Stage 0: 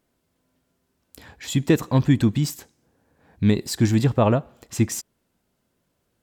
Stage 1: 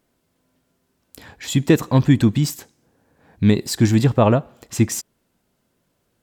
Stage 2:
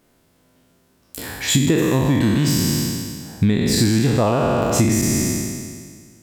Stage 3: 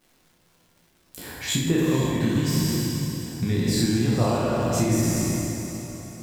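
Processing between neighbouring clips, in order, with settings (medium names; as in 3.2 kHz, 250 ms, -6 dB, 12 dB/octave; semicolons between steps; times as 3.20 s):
peaking EQ 67 Hz -7 dB 0.35 oct; trim +3.5 dB
spectral sustain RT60 1.82 s; compression 16:1, threshold -19 dBFS, peak gain reduction 13.5 dB; trim +6 dB
echo that smears into a reverb 495 ms, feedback 44%, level -10.5 dB; crackle 380 per s -41 dBFS; simulated room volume 220 m³, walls mixed, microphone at 0.98 m; trim -9 dB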